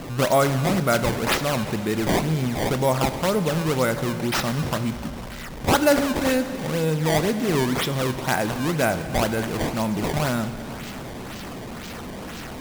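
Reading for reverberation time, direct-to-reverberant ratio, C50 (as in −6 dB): 2.9 s, 10.0 dB, 10.5 dB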